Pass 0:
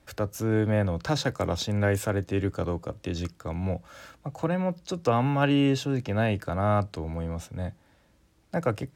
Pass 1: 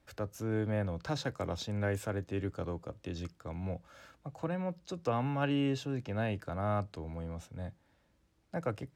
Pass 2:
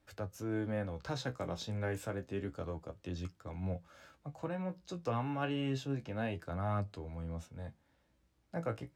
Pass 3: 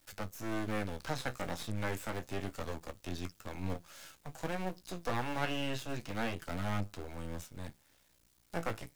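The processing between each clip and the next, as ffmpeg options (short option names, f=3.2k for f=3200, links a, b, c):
-af "highshelf=f=7.8k:g=-5,volume=-8.5dB"
-af "flanger=delay=9.7:depth=8.3:regen=42:speed=0.29:shape=triangular,volume=1dB"
-filter_complex "[0:a]aeval=exprs='max(val(0),0)':c=same,crystalizer=i=5.5:c=0,acrossover=split=2600[a][b];[b]acompressor=threshold=-49dB:ratio=4:attack=1:release=60[c];[a][c]amix=inputs=2:normalize=0,volume=3.5dB"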